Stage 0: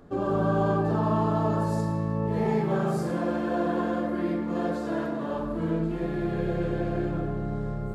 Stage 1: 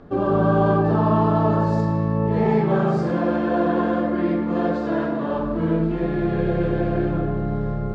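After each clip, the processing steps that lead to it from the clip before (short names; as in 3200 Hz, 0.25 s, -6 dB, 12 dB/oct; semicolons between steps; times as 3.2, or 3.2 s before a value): Bessel low-pass 3800 Hz, order 4; gain +6.5 dB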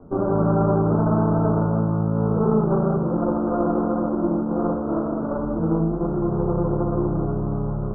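minimum comb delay 0.4 ms; steep low-pass 1400 Hz 96 dB/oct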